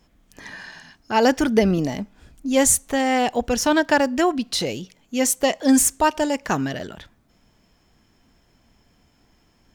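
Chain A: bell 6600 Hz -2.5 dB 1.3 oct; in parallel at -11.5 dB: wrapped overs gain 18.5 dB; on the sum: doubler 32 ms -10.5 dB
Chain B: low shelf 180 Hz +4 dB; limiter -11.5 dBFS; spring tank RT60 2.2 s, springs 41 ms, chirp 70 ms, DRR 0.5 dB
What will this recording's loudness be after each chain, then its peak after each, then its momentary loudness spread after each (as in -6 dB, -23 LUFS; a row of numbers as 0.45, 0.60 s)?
-20.5, -19.5 LUFS; -3.5, -5.0 dBFS; 16, 18 LU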